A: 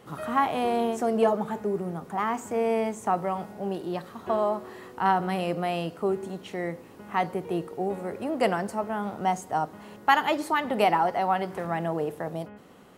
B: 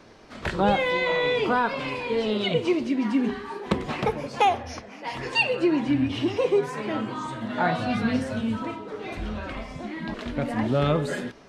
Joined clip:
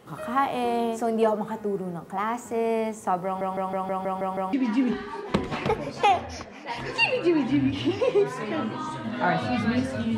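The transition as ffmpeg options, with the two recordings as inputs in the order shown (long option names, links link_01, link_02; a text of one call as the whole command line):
ffmpeg -i cue0.wav -i cue1.wav -filter_complex "[0:a]apad=whole_dur=10.17,atrim=end=10.17,asplit=8[link_01][link_02][link_03][link_04][link_05][link_06][link_07][link_08];[link_01]atrim=end=3.412[link_09];[link_02]atrim=start=3.248:end=3.412[link_10];[link_03]atrim=start=3.248:end=3.412[link_11];[link_04]atrim=start=3.248:end=3.412[link_12];[link_05]atrim=start=3.248:end=3.412[link_13];[link_06]atrim=start=3.248:end=3.412[link_14];[link_07]atrim=start=3.248:end=3.412[link_15];[link_08]atrim=start=3.248:end=3.412[link_16];[1:a]atrim=start=2.898:end=8.54[link_17];[link_09][link_10]acrossfade=duration=0.004:curve1=hsin:curve2=hsin[link_18];[link_18][link_11]acrossfade=duration=0.004:curve1=hsin:curve2=hsin[link_19];[link_19][link_12]acrossfade=duration=0.004:curve1=hsin:curve2=hsin[link_20];[link_20][link_13]acrossfade=duration=0.004:curve1=hsin:curve2=hsin[link_21];[link_21][link_14]acrossfade=duration=0.004:curve1=hsin:curve2=hsin[link_22];[link_22][link_15]acrossfade=duration=0.004:curve1=hsin:curve2=hsin[link_23];[link_23][link_16]acrossfade=duration=0.004:curve1=hsin:curve2=hsin[link_24];[link_24][link_17]acrossfade=duration=0.004:curve1=hsin:curve2=hsin" out.wav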